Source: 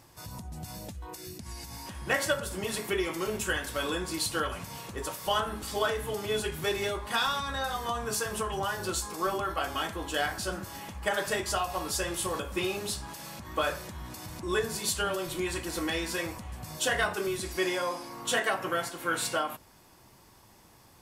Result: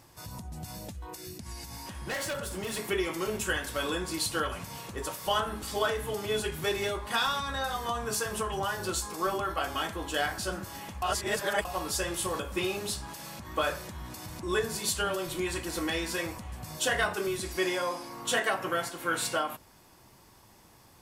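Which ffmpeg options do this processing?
ffmpeg -i in.wav -filter_complex "[0:a]asettb=1/sr,asplit=3[link_01][link_02][link_03];[link_01]atrim=end=2.084[link_04];[link_02]atrim=start=2.08:end=2.77,asetpts=PTS-STARTPTS,afade=type=in:duration=0.004:curve=qsin,afade=type=out:start_time=0.686:duration=0.004:curve=qsin,asoftclip=type=hard:threshold=-31dB[link_05];[link_03]atrim=start=2.766[link_06];[link_04][link_05]acrossfade=duration=0.004:curve1=hsin:curve2=qsin[link_07];[link_07][link_06]acrossfade=duration=0.004:curve1=qsin:curve2=hsin,asplit=3[link_08][link_09][link_10];[link_08]atrim=end=11.022[link_11];[link_09]atrim=start=11.018:end=11.652,asetpts=PTS-STARTPTS,areverse[link_12];[link_10]atrim=start=11.648[link_13];[link_11][link_12]acrossfade=duration=0.004:curve1=hsin:curve2=hsin[link_14];[link_14][link_13]acrossfade=duration=0.004:curve1=hsin:curve2=hsin" out.wav

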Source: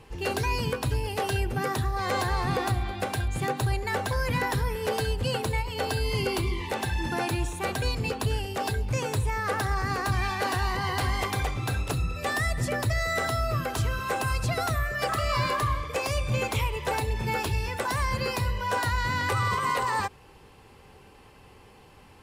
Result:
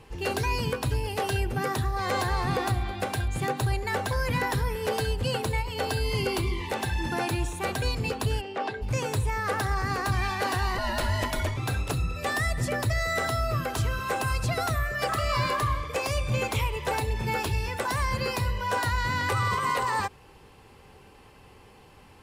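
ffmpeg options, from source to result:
ffmpeg -i in.wav -filter_complex "[0:a]asplit=3[link_01][link_02][link_03];[link_01]afade=type=out:start_time=8.4:duration=0.02[link_04];[link_02]highpass=250,lowpass=2900,afade=type=in:start_time=8.4:duration=0.02,afade=type=out:start_time=8.81:duration=0.02[link_05];[link_03]afade=type=in:start_time=8.81:duration=0.02[link_06];[link_04][link_05][link_06]amix=inputs=3:normalize=0,asettb=1/sr,asplit=3[link_07][link_08][link_09];[link_07]atrim=end=10.784[link_10];[link_08]atrim=start=10.78:end=11.57,asetpts=PTS-STARTPTS,afade=type=in:duration=0.004:curve=qsin,afade=type=out:start_time=0.786:duration=0.004:curve=qsin,afreqshift=-150[link_11];[link_09]atrim=start=11.566[link_12];[link_10][link_11]acrossfade=duration=0.004:curve1=hsin:curve2=qsin[link_13];[link_13][link_12]acrossfade=duration=0.004:curve1=qsin:curve2=hsin" out.wav

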